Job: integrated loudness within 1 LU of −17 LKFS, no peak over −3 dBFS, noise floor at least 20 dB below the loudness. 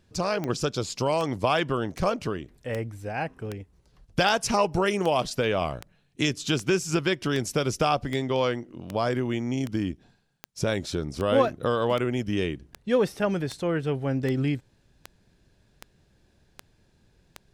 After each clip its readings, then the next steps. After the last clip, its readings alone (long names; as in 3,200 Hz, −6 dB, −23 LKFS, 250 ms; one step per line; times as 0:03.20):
number of clicks 23; integrated loudness −27.0 LKFS; sample peak −9.5 dBFS; target loudness −17.0 LKFS
→ click removal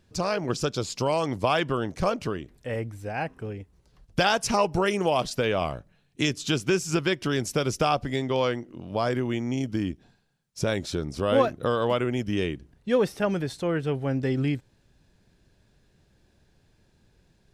number of clicks 0; integrated loudness −27.0 LKFS; sample peak −9.5 dBFS; target loudness −17.0 LKFS
→ level +10 dB
brickwall limiter −3 dBFS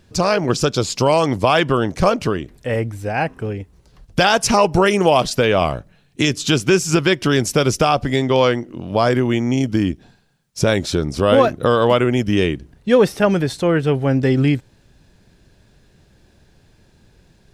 integrated loudness −17.5 LKFS; sample peak −3.0 dBFS; background noise floor −55 dBFS